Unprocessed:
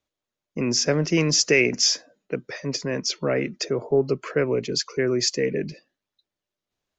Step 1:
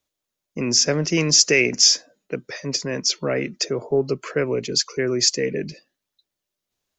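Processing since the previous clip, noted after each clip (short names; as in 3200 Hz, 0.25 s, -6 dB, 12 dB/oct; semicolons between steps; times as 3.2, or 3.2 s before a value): high shelf 4900 Hz +10 dB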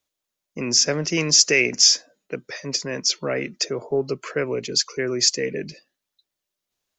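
low shelf 450 Hz -4.5 dB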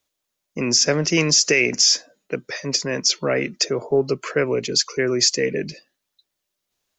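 limiter -10.5 dBFS, peak gain reduction 8.5 dB; gain +4 dB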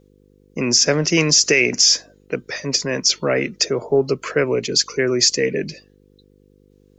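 buzz 50 Hz, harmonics 10, -56 dBFS -1 dB/oct; gain +2 dB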